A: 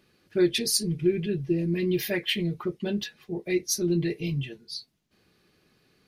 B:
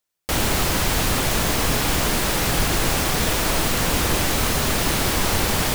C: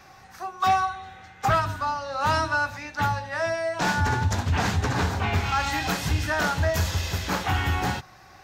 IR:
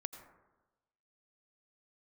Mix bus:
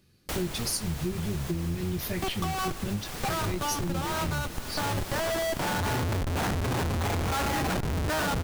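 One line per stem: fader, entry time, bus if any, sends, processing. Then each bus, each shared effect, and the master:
−6.0 dB, 0.00 s, no send, sub-octave generator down 1 octave, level −3 dB; bass and treble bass +10 dB, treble +9 dB
−9.5 dB, 0.00 s, send −11 dB, automatic ducking −11 dB, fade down 1.55 s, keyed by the first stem
0.0 dB, 1.80 s, send −8 dB, bass and treble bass −3 dB, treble −11 dB; comparator with hysteresis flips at −28 dBFS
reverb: on, RT60 1.1 s, pre-delay 77 ms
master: downward compressor, threshold −27 dBFS, peak gain reduction 10.5 dB

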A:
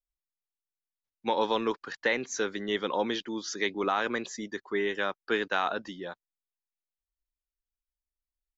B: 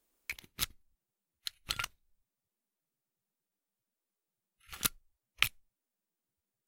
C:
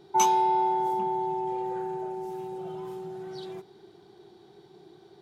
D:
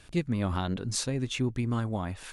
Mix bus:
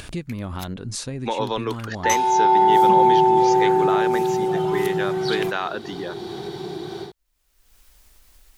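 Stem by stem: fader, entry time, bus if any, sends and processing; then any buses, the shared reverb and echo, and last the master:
+2.0 dB, 0.00 s, no send, no processing
−8.5 dB, 0.00 s, no send, no processing
+2.0 dB, 1.90 s, no send, parametric band 490 Hz −3 dB 2.2 octaves; automatic gain control gain up to 15.5 dB
−4.0 dB, 0.00 s, no send, no processing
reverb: not used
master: upward compression, threshold −23 dBFS

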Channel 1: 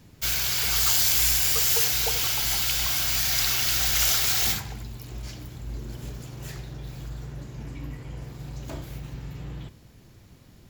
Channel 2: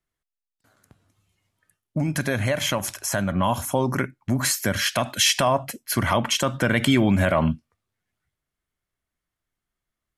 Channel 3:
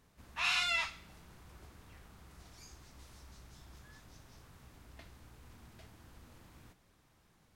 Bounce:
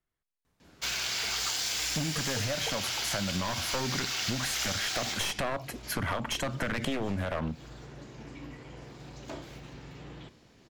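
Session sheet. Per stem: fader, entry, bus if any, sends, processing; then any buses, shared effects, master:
−1.0 dB, 0.60 s, no send, three-way crossover with the lows and the highs turned down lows −13 dB, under 210 Hz, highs −19 dB, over 7,500 Hz
−2.0 dB, 0.00 s, no send, wavefolder on the positive side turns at −18.5 dBFS; high-shelf EQ 4,500 Hz −8 dB
−2.0 dB, 0.45 s, no send, automatic ducking −19 dB, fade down 2.00 s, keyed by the second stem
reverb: not used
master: downward compressor, threshold −28 dBFS, peak gain reduction 10 dB

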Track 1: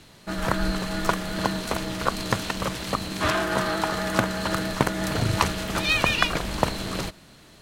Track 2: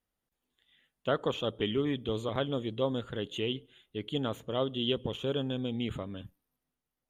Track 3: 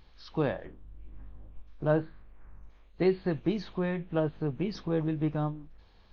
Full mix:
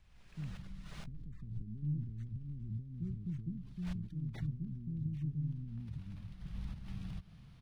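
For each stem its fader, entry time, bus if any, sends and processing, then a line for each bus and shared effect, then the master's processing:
0:05.55 −15.5 dB → 0:05.83 −4 dB, 0.10 s, bus A, no send, automatic ducking −13 dB, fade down 1.50 s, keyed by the second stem
−1.0 dB, 0.00 s, bus A, no send, background raised ahead of every attack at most 38 dB per second
−9.0 dB, 0.00 s, no bus, no send, no processing
bus A: 0.0 dB, downward compressor 10 to 1, threshold −38 dBFS, peak gain reduction 16 dB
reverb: not used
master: inverse Chebyshev band-stop filter 660–3,900 Hz, stop band 70 dB; automatic gain control gain up to 5 dB; linearly interpolated sample-rate reduction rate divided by 3×

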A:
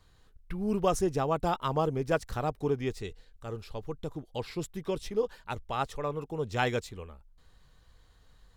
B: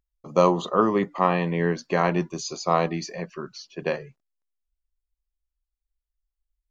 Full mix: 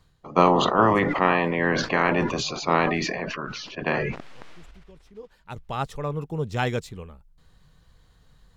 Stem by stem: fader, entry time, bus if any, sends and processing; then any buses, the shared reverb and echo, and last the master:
+2.0 dB, 0.00 s, no send, parametric band 160 Hz +8 dB 0.9 octaves; automatic ducking −23 dB, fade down 0.50 s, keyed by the second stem
+0.5 dB, 0.00 s, no send, ceiling on every frequency bin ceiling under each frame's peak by 16 dB; low-pass filter 2,600 Hz 12 dB per octave; level that may fall only so fast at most 29 dB per second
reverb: not used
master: no processing

